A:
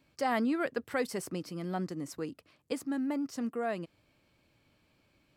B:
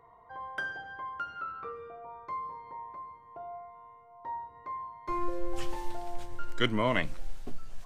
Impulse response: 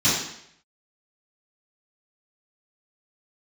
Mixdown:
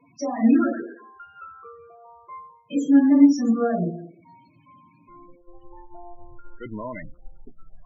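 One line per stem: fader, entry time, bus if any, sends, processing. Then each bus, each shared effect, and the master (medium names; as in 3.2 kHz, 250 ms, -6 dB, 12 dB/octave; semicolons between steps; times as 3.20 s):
+1.5 dB, 0.00 s, muted 0.77–2.64 s, send -4 dB, high-pass 130 Hz 12 dB/octave; tilt shelf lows -4.5 dB, about 1.4 kHz; peak limiter -29.5 dBFS, peak gain reduction 11.5 dB
-1.0 dB, 0.00 s, no send, valve stage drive 22 dB, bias 0.35; auto duck -12 dB, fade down 0.30 s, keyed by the first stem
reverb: on, RT60 0.70 s, pre-delay 3 ms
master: treble shelf 2.6 kHz -5 dB; loudest bins only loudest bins 16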